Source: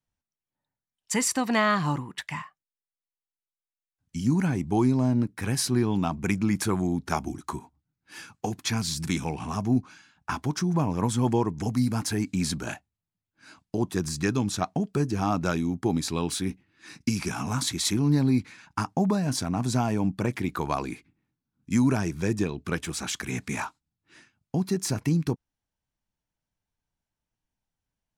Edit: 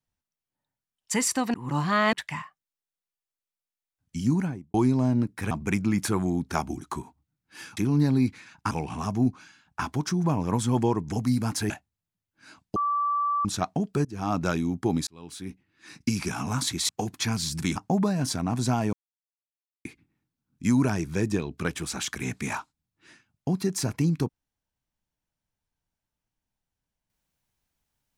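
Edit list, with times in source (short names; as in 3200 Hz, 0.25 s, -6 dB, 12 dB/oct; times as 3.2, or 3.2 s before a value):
1.54–2.13 reverse
4.28–4.74 studio fade out
5.51–6.08 cut
8.34–9.21 swap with 17.89–18.83
12.2–12.7 cut
13.76–14.45 bleep 1160 Hz -22.5 dBFS
15.05–15.36 fade in, from -22 dB
16.07–17.04 fade in
20–20.92 mute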